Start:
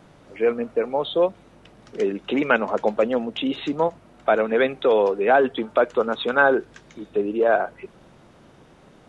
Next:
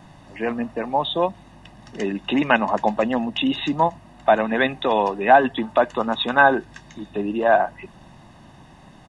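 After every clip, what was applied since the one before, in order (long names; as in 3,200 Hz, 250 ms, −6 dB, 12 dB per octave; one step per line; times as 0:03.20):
comb filter 1.1 ms, depth 71%
level +2.5 dB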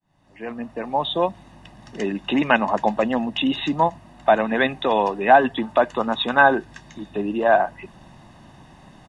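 fade in at the beginning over 1.10 s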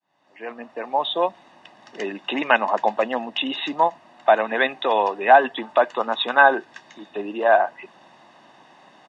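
band-pass filter 420–5,600 Hz
level +1 dB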